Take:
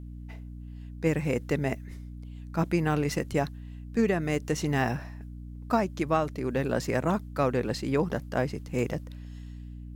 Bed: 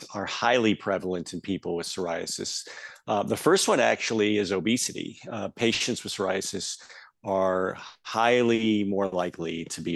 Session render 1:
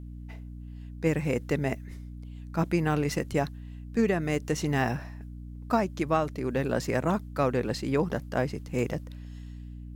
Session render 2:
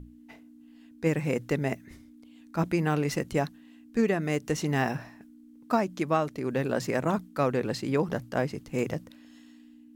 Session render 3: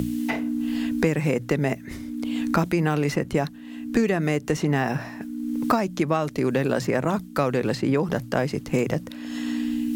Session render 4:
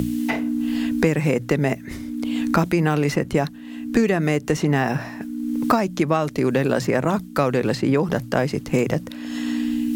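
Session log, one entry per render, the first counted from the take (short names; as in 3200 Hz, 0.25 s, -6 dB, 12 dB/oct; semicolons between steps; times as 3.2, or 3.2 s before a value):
nothing audible
notches 60/120/180 Hz
in parallel at +1 dB: limiter -23 dBFS, peak gain reduction 10 dB; on the sum: three-band squash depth 100%
gain +3 dB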